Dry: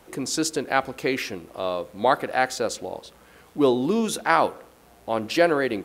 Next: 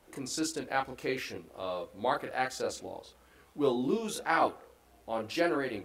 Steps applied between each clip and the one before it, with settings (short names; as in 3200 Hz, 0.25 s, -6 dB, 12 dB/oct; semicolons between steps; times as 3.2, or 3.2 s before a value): chorus voices 6, 0.47 Hz, delay 30 ms, depth 2 ms; gain -6 dB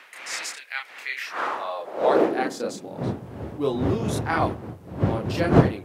wind noise 410 Hz -28 dBFS; high-pass sweep 2100 Hz -> 95 Hz, 1.02–3.29; gain +2.5 dB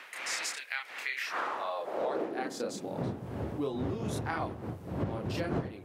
compressor 6:1, threshold -31 dBFS, peak gain reduction 20 dB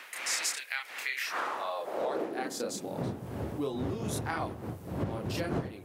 high shelf 6600 Hz +10.5 dB